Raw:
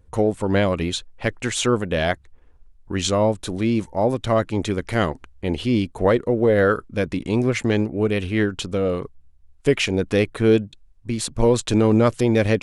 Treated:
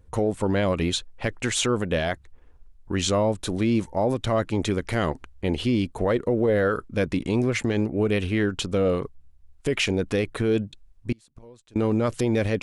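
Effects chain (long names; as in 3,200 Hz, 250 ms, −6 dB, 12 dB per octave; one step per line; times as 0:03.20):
0:11.12–0:11.76: gate with flip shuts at −22 dBFS, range −31 dB
brickwall limiter −14 dBFS, peak gain reduction 8.5 dB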